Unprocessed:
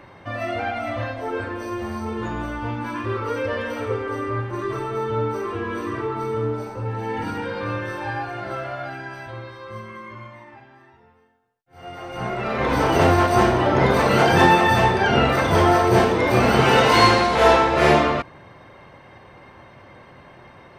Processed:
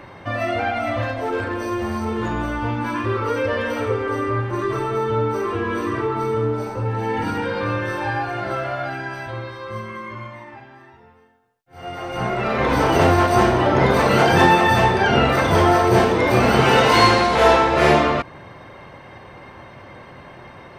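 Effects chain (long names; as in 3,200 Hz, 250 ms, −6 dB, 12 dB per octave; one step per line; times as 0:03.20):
in parallel at 0 dB: downward compressor, threshold −25 dBFS, peak gain reduction 14.5 dB
0:01.02–0:02.33: on the sum: hard clipping −16.5 dBFS, distortion −38 dB
level −1 dB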